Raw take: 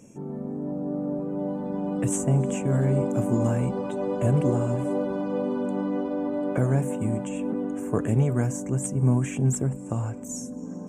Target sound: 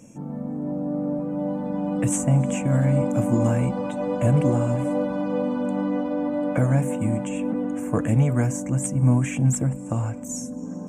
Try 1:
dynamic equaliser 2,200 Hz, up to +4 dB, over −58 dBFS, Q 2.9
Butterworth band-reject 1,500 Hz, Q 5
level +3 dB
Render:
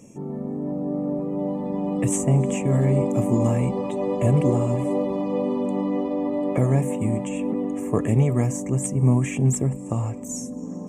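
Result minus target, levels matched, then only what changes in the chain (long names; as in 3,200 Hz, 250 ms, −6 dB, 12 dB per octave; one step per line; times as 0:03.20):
2,000 Hz band −3.0 dB
change: Butterworth band-reject 400 Hz, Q 5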